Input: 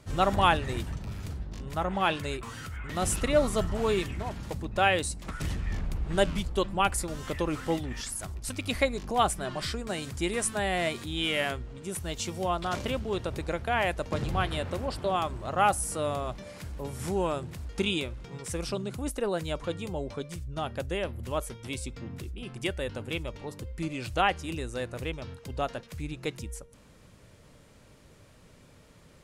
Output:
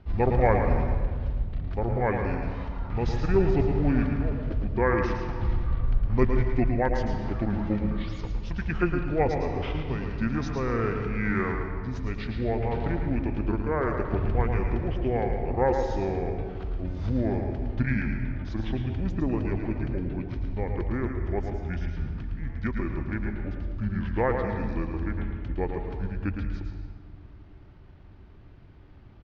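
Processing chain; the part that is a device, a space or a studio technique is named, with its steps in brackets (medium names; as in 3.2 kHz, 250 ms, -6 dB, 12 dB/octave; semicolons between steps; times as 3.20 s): monster voice (pitch shift -7.5 st; bass shelf 160 Hz +7 dB; delay 110 ms -7 dB; reverberation RT60 1.6 s, pre-delay 113 ms, DRR 6 dB); 21.05–21.91 s: band-stop 4.1 kHz, Q 5.2; low-pass 8.1 kHz; distance through air 320 m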